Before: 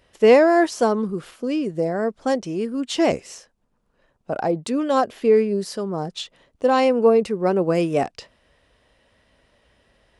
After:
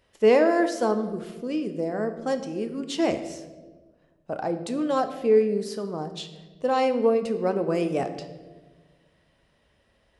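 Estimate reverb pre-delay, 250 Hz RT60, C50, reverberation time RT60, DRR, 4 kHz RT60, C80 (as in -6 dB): 9 ms, 1.8 s, 10.5 dB, 1.4 s, 8.0 dB, 0.90 s, 12.5 dB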